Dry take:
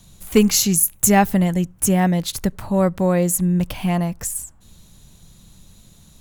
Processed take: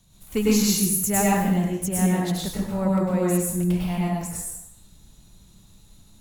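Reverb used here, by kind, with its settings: plate-style reverb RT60 0.84 s, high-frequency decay 0.8×, pre-delay 90 ms, DRR -5.5 dB; trim -11 dB

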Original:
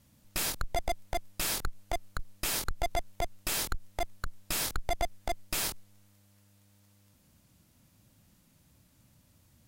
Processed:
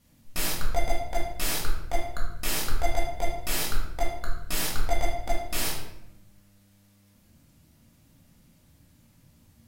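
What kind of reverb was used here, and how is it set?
simulated room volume 270 m³, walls mixed, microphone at 1.8 m; trim -2 dB

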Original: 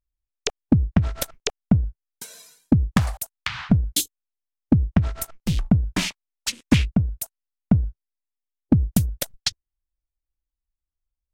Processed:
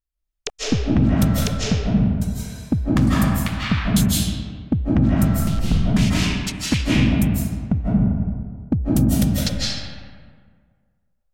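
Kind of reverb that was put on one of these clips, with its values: algorithmic reverb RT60 1.8 s, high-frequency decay 0.55×, pre-delay 120 ms, DRR -7.5 dB; trim -3.5 dB

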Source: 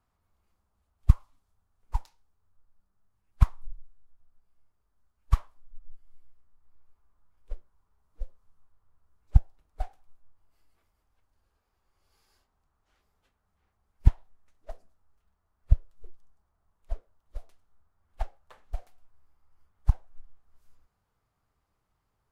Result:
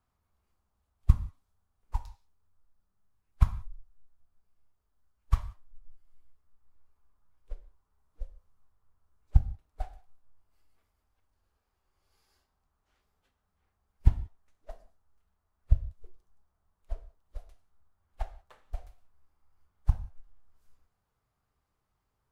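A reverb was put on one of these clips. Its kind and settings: gated-style reverb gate 210 ms falling, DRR 10 dB; trim -3 dB

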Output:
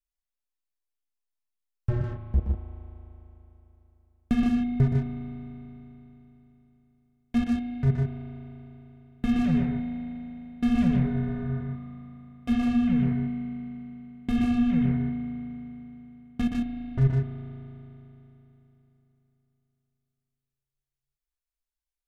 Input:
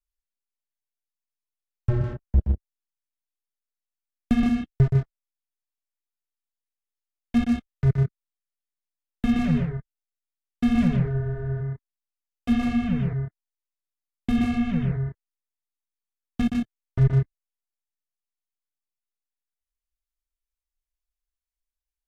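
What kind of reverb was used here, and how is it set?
spring tank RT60 3.5 s, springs 37 ms, chirp 40 ms, DRR 6.5 dB; trim -3.5 dB

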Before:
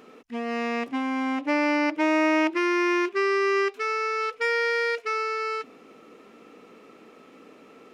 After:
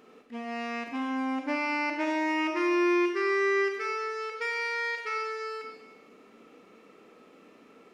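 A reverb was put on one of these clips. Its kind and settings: Schroeder reverb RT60 0.97 s, combs from 31 ms, DRR 2.5 dB; trim -6.5 dB

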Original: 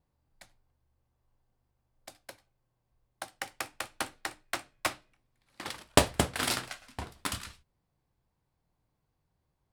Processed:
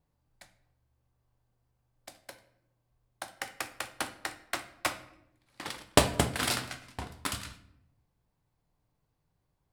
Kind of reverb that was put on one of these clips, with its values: simulated room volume 200 m³, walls mixed, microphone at 0.34 m

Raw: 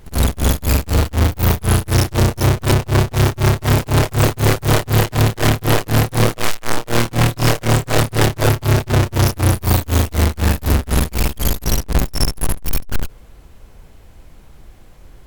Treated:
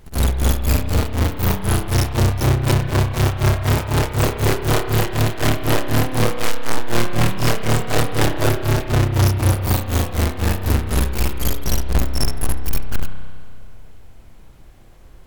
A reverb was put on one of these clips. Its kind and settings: spring tank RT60 2.2 s, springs 31 ms, chirp 30 ms, DRR 7 dB; trim -3.5 dB

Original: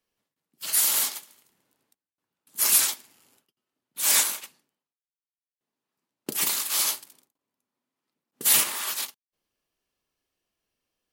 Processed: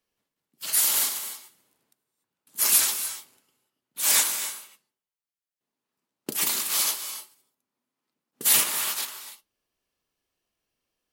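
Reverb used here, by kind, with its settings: gated-style reverb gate 320 ms rising, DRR 9.5 dB

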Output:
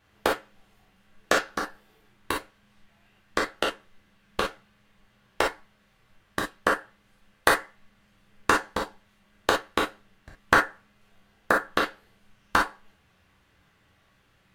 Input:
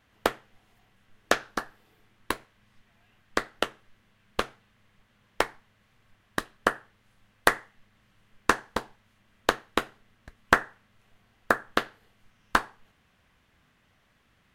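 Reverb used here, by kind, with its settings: gated-style reverb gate 80 ms flat, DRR -1.5 dB; trim -1.5 dB

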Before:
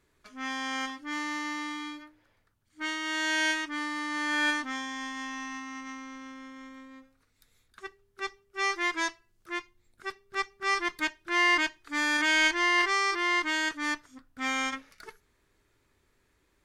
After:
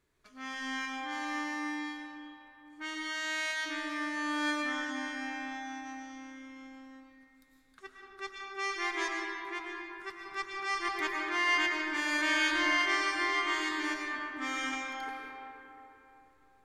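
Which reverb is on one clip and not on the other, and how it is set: algorithmic reverb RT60 3.7 s, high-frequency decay 0.45×, pre-delay 70 ms, DRR -1.5 dB; trim -6.5 dB

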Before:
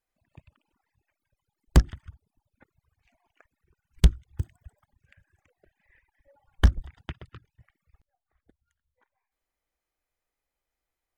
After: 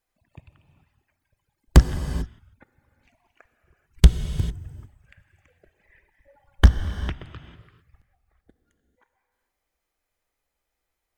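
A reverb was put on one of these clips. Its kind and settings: gated-style reverb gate 470 ms flat, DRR 9 dB; trim +5 dB

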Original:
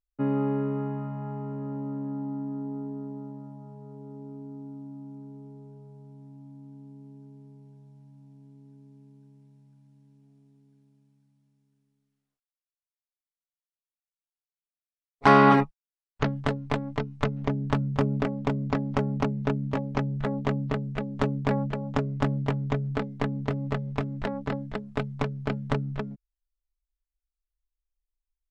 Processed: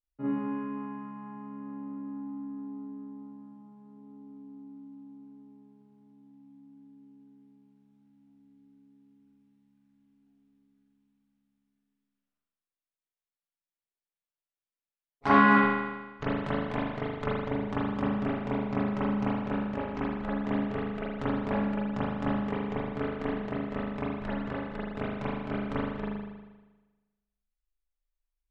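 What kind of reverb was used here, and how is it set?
spring tank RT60 1.2 s, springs 39 ms, chirp 40 ms, DRR -10 dB; trim -12 dB

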